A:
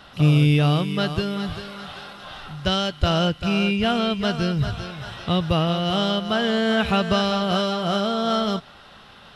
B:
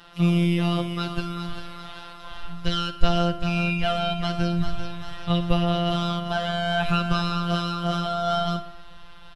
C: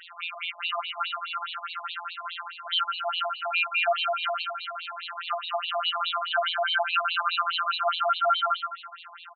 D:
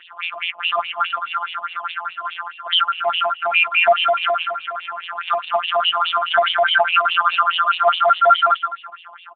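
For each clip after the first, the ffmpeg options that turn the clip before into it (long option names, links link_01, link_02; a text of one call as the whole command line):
ffmpeg -i in.wav -af "afftfilt=real='hypot(re,im)*cos(PI*b)':imag='0':win_size=1024:overlap=0.75,aecho=1:1:61|122|183|244|305|366:0.224|0.132|0.0779|0.046|0.0271|0.016,asubboost=boost=9.5:cutoff=81" out.wav
ffmpeg -i in.wav -af "acompressor=threshold=-24dB:ratio=2,aecho=1:1:127|254|381|508:0.376|0.135|0.0487|0.0175,afftfilt=real='re*between(b*sr/1024,800*pow(3300/800,0.5+0.5*sin(2*PI*4.8*pts/sr))/1.41,800*pow(3300/800,0.5+0.5*sin(2*PI*4.8*pts/sr))*1.41)':imag='im*between(b*sr/1024,800*pow(3300/800,0.5+0.5*sin(2*PI*4.8*pts/sr))/1.41,800*pow(3300/800,0.5+0.5*sin(2*PI*4.8*pts/sr))*1.41)':win_size=1024:overlap=0.75,volume=8.5dB" out.wav
ffmpeg -i in.wav -filter_complex "[0:a]asplit=2[link_01][link_02];[link_02]adynamicsmooth=sensitivity=5.5:basefreq=550,volume=0dB[link_03];[link_01][link_03]amix=inputs=2:normalize=0,volume=5.5dB" -ar 8000 -c:a libopencore_amrnb -b:a 6700 out.amr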